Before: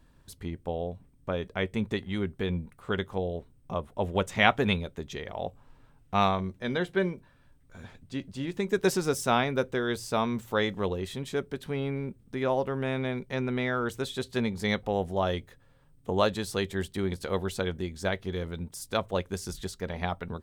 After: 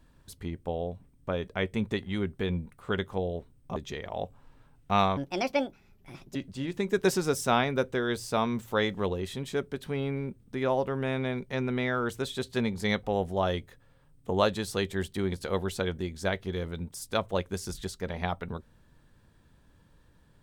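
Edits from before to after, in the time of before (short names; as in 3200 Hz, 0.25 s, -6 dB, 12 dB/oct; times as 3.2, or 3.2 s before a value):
3.76–4.99 cut
6.4–8.15 speed 148%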